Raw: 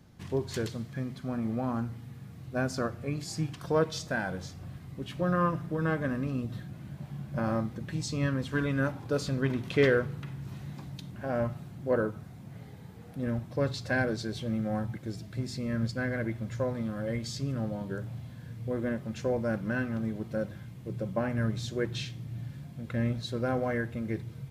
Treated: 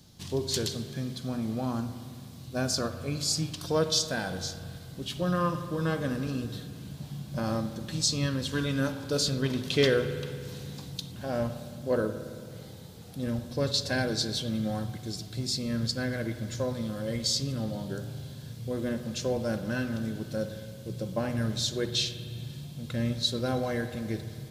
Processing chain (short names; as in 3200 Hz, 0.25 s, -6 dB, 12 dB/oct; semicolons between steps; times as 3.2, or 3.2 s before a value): resonant high shelf 2800 Hz +10.5 dB, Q 1.5; spring tank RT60 2.2 s, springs 55 ms, chirp 65 ms, DRR 10 dB